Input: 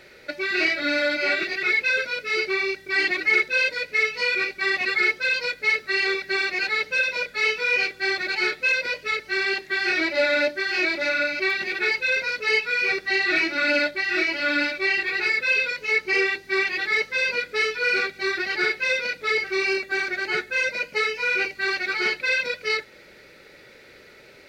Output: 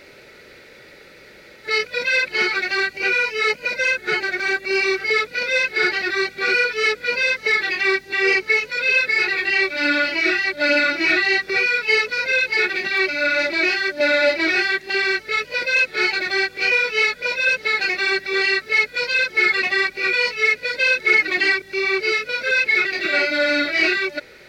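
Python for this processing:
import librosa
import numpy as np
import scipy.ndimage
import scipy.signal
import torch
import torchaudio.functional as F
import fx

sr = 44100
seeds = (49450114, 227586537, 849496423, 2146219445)

y = np.flip(x).copy()
y = y * librosa.db_to_amplitude(4.0)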